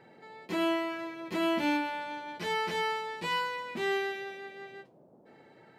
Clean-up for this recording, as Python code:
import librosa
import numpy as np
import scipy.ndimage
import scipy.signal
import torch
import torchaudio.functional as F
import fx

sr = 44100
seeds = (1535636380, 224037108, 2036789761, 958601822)

y = fx.noise_reduce(x, sr, print_start_s=4.84, print_end_s=5.34, reduce_db=20.0)